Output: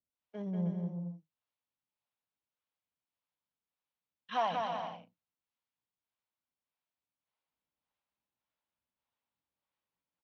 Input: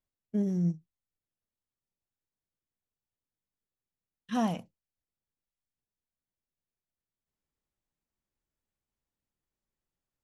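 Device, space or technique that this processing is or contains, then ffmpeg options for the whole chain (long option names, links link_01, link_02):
guitar amplifier with harmonic tremolo: -filter_complex "[0:a]acrossover=split=430[link_01][link_02];[link_01]aeval=exprs='val(0)*(1-1/2+1/2*cos(2*PI*1.7*n/s))':channel_layout=same[link_03];[link_02]aeval=exprs='val(0)*(1-1/2-1/2*cos(2*PI*1.7*n/s))':channel_layout=same[link_04];[link_03][link_04]amix=inputs=2:normalize=0,asoftclip=type=tanh:threshold=-25.5dB,highpass=58,highpass=83,equalizer=frequency=85:width_type=q:width=4:gain=-10,equalizer=frequency=140:width_type=q:width=4:gain=-9,equalizer=frequency=210:width_type=q:width=4:gain=-5,equalizer=frequency=370:width_type=q:width=4:gain=-8,equalizer=frequency=950:width_type=q:width=4:gain=4,equalizer=frequency=1800:width_type=q:width=4:gain=-4,lowpass=frequency=3900:width=0.5412,lowpass=frequency=3900:width=1.3066,equalizer=frequency=150:width=0.31:gain=-3,aecho=1:1:190|313.5|393.8|446|479.9:0.631|0.398|0.251|0.158|0.1,volume=5dB"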